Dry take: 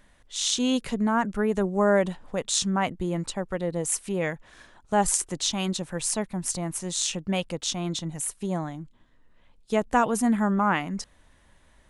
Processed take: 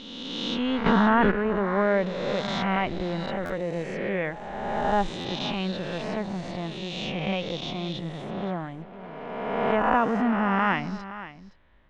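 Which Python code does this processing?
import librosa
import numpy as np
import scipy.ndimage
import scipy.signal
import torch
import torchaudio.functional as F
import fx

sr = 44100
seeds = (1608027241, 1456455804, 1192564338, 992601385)

p1 = fx.spec_swells(x, sr, rise_s=1.91)
p2 = fx.quant_dither(p1, sr, seeds[0], bits=6, dither='none')
p3 = p1 + (p2 * librosa.db_to_amplitude(-11.5))
p4 = scipy.signal.sosfilt(scipy.signal.butter(4, 3300.0, 'lowpass', fs=sr, output='sos'), p3)
p5 = p4 + 10.0 ** (-14.5 / 20.0) * np.pad(p4, (int(518 * sr / 1000.0), 0))[:len(p4)]
p6 = fx.buffer_glitch(p5, sr, at_s=(3.45, 5.2), block=512, repeats=3)
p7 = fx.env_flatten(p6, sr, amount_pct=100, at=(0.85, 1.3), fade=0.02)
y = p7 * librosa.db_to_amplitude(-5.0)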